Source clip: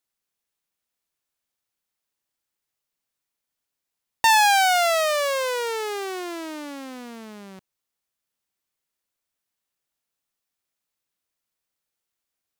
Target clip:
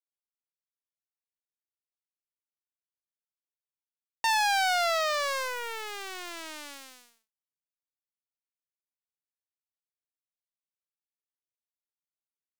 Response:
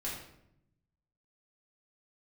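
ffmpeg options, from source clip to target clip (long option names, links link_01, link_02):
-filter_complex "[0:a]tremolo=f=0.6:d=0.33,lowshelf=frequency=420:gain=-10,asplit=2[link_01][link_02];[link_02]alimiter=limit=-18.5dB:level=0:latency=1,volume=-0.5dB[link_03];[link_01][link_03]amix=inputs=2:normalize=0,acrossover=split=9100[link_04][link_05];[link_05]acompressor=threshold=-38dB:ratio=4:attack=1:release=60[link_06];[link_04][link_06]amix=inputs=2:normalize=0,acrusher=bits=3:mix=0:aa=0.5,volume=-8dB"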